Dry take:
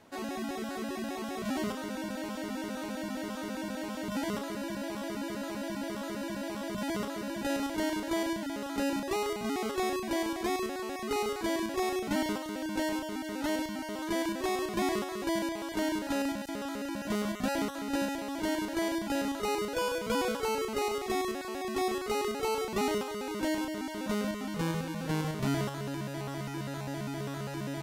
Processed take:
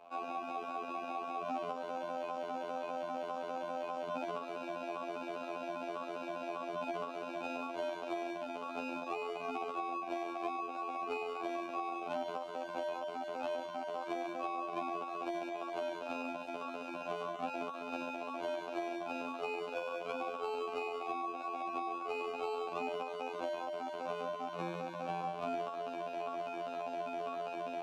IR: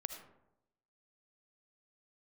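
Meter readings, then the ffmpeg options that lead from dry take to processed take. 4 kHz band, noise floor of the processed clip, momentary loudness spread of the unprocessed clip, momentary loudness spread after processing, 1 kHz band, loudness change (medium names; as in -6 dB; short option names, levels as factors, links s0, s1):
-11.5 dB, -44 dBFS, 6 LU, 3 LU, -1.5 dB, -6.0 dB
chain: -filter_complex "[0:a]asplit=3[s0][s1][s2];[s0]bandpass=f=730:t=q:w=8,volume=1[s3];[s1]bandpass=f=1090:t=q:w=8,volume=0.501[s4];[s2]bandpass=f=2440:t=q:w=8,volume=0.355[s5];[s3][s4][s5]amix=inputs=3:normalize=0,asplit=2[s6][s7];[s7]alimiter=level_in=4.47:limit=0.0631:level=0:latency=1:release=469,volume=0.224,volume=1.33[s8];[s6][s8]amix=inputs=2:normalize=0,afftfilt=real='hypot(re,im)*cos(PI*b)':imag='0':win_size=2048:overlap=0.75,acrossover=split=320|750[s9][s10][s11];[s10]acompressor=threshold=0.00355:ratio=4[s12];[s11]acompressor=threshold=0.00355:ratio=4[s13];[s9][s12][s13]amix=inputs=3:normalize=0,volume=2.51"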